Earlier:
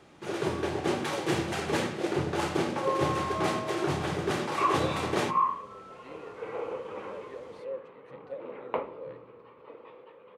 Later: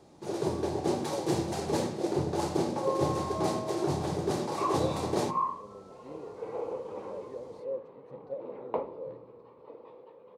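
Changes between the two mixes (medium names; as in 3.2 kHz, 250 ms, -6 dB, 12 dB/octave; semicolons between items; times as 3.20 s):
speech: add tilt EQ -2 dB/octave; master: add high-order bell 2 kHz -11 dB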